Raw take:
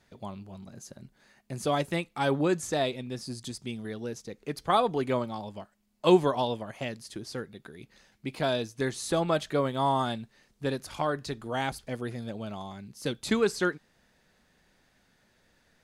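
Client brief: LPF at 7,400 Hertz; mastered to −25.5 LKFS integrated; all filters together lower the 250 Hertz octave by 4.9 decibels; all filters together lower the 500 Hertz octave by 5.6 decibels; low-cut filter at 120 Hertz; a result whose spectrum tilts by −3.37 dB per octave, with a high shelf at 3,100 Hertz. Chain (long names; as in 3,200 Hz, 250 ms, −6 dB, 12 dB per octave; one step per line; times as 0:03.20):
high-pass filter 120 Hz
low-pass filter 7,400 Hz
parametric band 250 Hz −4 dB
parametric band 500 Hz −6.5 dB
high-shelf EQ 3,100 Hz +9 dB
level +6.5 dB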